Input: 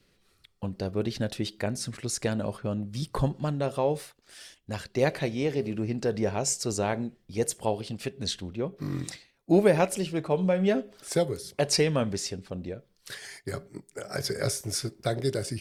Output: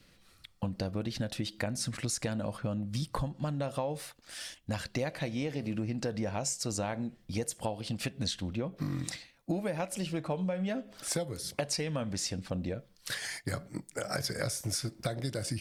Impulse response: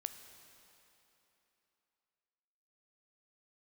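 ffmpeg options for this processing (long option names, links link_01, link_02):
-af "equalizer=frequency=400:width=7.3:gain=-14.5,acompressor=threshold=-35dB:ratio=10,volume=5dB"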